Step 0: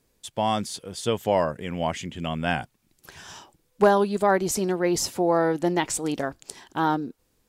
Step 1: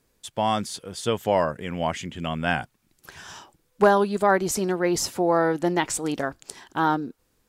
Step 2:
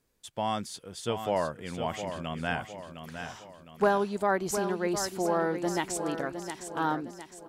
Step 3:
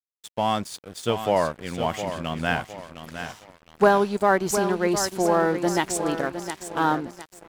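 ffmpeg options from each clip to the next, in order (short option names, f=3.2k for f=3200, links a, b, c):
-af "equalizer=f=1.4k:t=o:w=0.93:g=3.5"
-af "aecho=1:1:710|1420|2130|2840|3550:0.376|0.169|0.0761|0.0342|0.0154,volume=-7dB"
-af "aeval=exprs='sgn(val(0))*max(abs(val(0))-0.00422,0)':c=same,volume=7.5dB"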